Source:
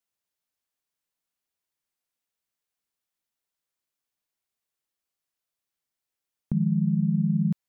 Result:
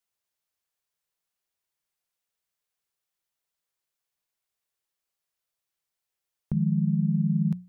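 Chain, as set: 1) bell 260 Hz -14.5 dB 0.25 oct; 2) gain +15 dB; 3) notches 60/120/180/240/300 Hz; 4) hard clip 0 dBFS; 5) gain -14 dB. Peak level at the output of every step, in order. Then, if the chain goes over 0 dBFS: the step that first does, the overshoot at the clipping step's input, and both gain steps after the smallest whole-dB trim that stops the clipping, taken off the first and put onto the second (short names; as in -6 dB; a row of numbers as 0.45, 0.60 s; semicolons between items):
-16.5, -1.5, -2.0, -2.0, -16.0 dBFS; no overload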